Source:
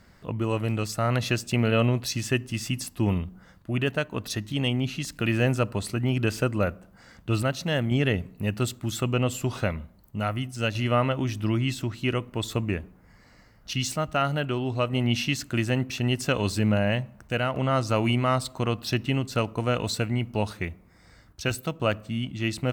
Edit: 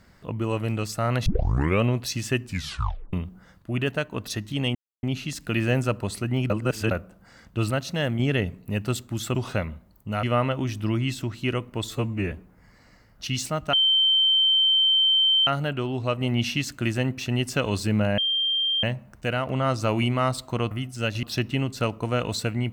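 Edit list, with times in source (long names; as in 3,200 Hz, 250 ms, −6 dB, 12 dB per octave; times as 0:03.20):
0:01.26: tape start 0.56 s
0:02.43: tape stop 0.70 s
0:04.75: splice in silence 0.28 s
0:06.22–0:06.63: reverse
0:09.07–0:09.43: remove
0:10.31–0:10.83: move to 0:18.78
0:12.50–0:12.78: time-stretch 1.5×
0:14.19: insert tone 3,110 Hz −16.5 dBFS 1.74 s
0:16.90: insert tone 3,170 Hz −21 dBFS 0.65 s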